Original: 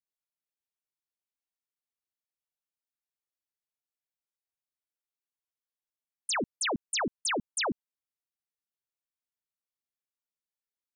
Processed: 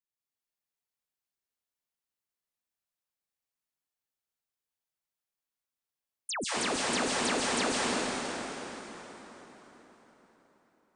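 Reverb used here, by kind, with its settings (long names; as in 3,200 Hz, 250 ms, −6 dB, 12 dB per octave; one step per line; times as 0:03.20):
dense smooth reverb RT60 4.5 s, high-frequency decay 0.75×, pre-delay 120 ms, DRR −7 dB
level −5 dB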